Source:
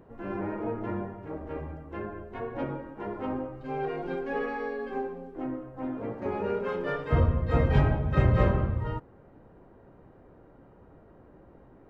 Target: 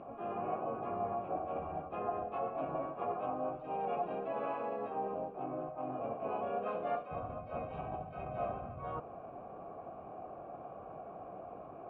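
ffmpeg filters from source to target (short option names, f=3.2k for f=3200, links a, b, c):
-filter_complex "[0:a]asplit=3[a][b][c];[b]asetrate=22050,aresample=44100,atempo=2,volume=-4dB[d];[c]asetrate=52444,aresample=44100,atempo=0.840896,volume=-1dB[e];[a][d][e]amix=inputs=3:normalize=0,areverse,acompressor=threshold=-38dB:ratio=10,areverse,asplit=3[f][g][h];[f]bandpass=f=730:t=q:w=8,volume=0dB[i];[g]bandpass=f=1.09k:t=q:w=8,volume=-6dB[j];[h]bandpass=f=2.44k:t=q:w=8,volume=-9dB[k];[i][j][k]amix=inputs=3:normalize=0,bass=f=250:g=9,treble=f=4k:g=-9,volume=16dB"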